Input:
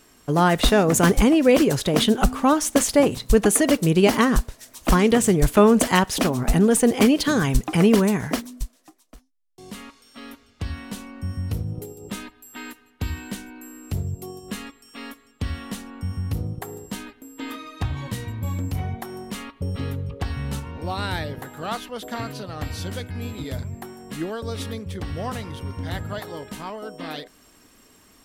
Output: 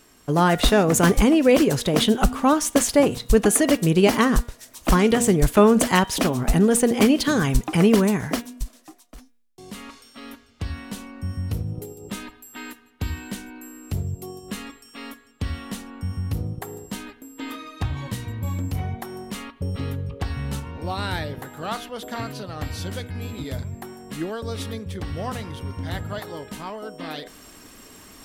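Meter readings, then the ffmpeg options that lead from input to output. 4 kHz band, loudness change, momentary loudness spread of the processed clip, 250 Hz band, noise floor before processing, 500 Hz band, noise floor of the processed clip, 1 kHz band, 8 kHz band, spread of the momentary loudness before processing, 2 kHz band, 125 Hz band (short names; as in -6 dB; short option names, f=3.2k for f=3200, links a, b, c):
0.0 dB, 0.0 dB, 19 LU, 0.0 dB, -56 dBFS, 0.0 dB, -54 dBFS, 0.0 dB, 0.0 dB, 19 LU, 0.0 dB, 0.0 dB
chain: -af "areverse,acompressor=mode=upward:threshold=-36dB:ratio=2.5,areverse,bandreject=f=238:t=h:w=4,bandreject=f=476:t=h:w=4,bandreject=f=714:t=h:w=4,bandreject=f=952:t=h:w=4,bandreject=f=1.19k:t=h:w=4,bandreject=f=1.428k:t=h:w=4,bandreject=f=1.666k:t=h:w=4,bandreject=f=1.904k:t=h:w=4,bandreject=f=2.142k:t=h:w=4,bandreject=f=2.38k:t=h:w=4,bandreject=f=2.618k:t=h:w=4,bandreject=f=2.856k:t=h:w=4,bandreject=f=3.094k:t=h:w=4,bandreject=f=3.332k:t=h:w=4,bandreject=f=3.57k:t=h:w=4,bandreject=f=3.808k:t=h:w=4"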